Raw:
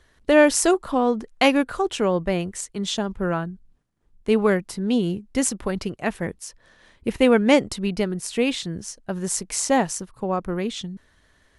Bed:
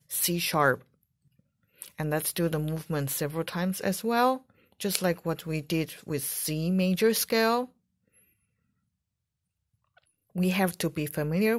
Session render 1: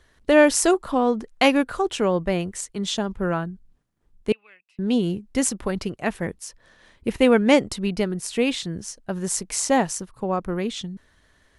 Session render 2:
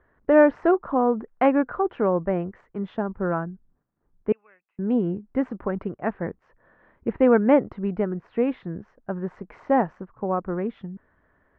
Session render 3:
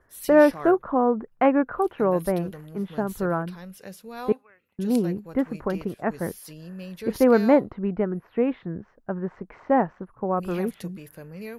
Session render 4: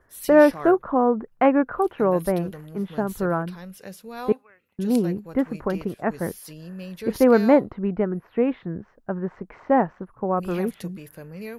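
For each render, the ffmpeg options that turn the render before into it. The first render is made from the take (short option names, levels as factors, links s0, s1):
-filter_complex "[0:a]asettb=1/sr,asplit=3[s0][s1][s2];[s0]atrim=end=4.324[s3];[s1]atrim=start=4.32:end=4.79,asetpts=PTS-STARTPTS,afade=t=in:d=0.004:c=qsin,afade=t=out:st=0.466:d=0.004:c=qsin,bandpass=f=2600:t=q:w=19[s4];[s2]atrim=start=4.786[s5];[s3][s4]acrossfade=d=0.004:c1=hsin:c2=qsin[s6];[s6][s5]acrossfade=d=0.004:c1=qsin:c2=hsin"
-af "lowpass=f=1600:w=0.5412,lowpass=f=1600:w=1.3066,lowshelf=f=93:g=-9"
-filter_complex "[1:a]volume=0.237[s0];[0:a][s0]amix=inputs=2:normalize=0"
-af "volume=1.19"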